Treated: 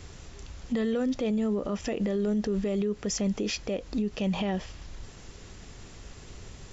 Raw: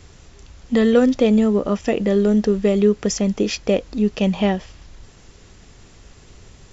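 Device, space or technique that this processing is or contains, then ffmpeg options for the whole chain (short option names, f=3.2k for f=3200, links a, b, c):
stacked limiters: -af "alimiter=limit=-10dB:level=0:latency=1:release=492,alimiter=limit=-15.5dB:level=0:latency=1:release=102,alimiter=limit=-21.5dB:level=0:latency=1:release=54"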